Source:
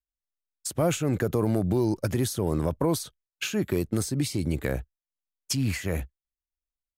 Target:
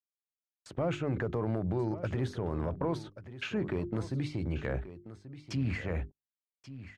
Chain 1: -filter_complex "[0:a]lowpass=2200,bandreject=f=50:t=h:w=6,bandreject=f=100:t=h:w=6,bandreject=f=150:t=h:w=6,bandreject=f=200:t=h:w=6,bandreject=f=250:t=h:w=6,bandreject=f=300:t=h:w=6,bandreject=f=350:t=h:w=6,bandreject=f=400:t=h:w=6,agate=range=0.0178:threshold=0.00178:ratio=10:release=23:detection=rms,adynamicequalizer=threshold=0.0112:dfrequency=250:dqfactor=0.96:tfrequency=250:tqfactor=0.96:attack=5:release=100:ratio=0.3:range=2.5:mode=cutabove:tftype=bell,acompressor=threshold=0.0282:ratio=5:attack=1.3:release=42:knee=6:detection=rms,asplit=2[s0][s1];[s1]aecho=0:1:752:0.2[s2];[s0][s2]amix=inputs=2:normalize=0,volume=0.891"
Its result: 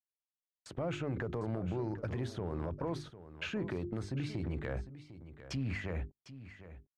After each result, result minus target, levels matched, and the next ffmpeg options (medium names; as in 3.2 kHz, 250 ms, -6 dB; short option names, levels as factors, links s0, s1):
echo 382 ms early; compression: peak gain reduction +5 dB
-filter_complex "[0:a]lowpass=2200,bandreject=f=50:t=h:w=6,bandreject=f=100:t=h:w=6,bandreject=f=150:t=h:w=6,bandreject=f=200:t=h:w=6,bandreject=f=250:t=h:w=6,bandreject=f=300:t=h:w=6,bandreject=f=350:t=h:w=6,bandreject=f=400:t=h:w=6,agate=range=0.0178:threshold=0.00178:ratio=10:release=23:detection=rms,adynamicequalizer=threshold=0.0112:dfrequency=250:dqfactor=0.96:tfrequency=250:tqfactor=0.96:attack=5:release=100:ratio=0.3:range=2.5:mode=cutabove:tftype=bell,acompressor=threshold=0.0282:ratio=5:attack=1.3:release=42:knee=6:detection=rms,asplit=2[s0][s1];[s1]aecho=0:1:1134:0.2[s2];[s0][s2]amix=inputs=2:normalize=0,volume=0.891"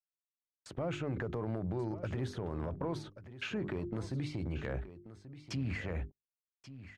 compression: peak gain reduction +5 dB
-filter_complex "[0:a]lowpass=2200,bandreject=f=50:t=h:w=6,bandreject=f=100:t=h:w=6,bandreject=f=150:t=h:w=6,bandreject=f=200:t=h:w=6,bandreject=f=250:t=h:w=6,bandreject=f=300:t=h:w=6,bandreject=f=350:t=h:w=6,bandreject=f=400:t=h:w=6,agate=range=0.0178:threshold=0.00178:ratio=10:release=23:detection=rms,adynamicequalizer=threshold=0.0112:dfrequency=250:dqfactor=0.96:tfrequency=250:tqfactor=0.96:attack=5:release=100:ratio=0.3:range=2.5:mode=cutabove:tftype=bell,acompressor=threshold=0.0596:ratio=5:attack=1.3:release=42:knee=6:detection=rms,asplit=2[s0][s1];[s1]aecho=0:1:1134:0.2[s2];[s0][s2]amix=inputs=2:normalize=0,volume=0.891"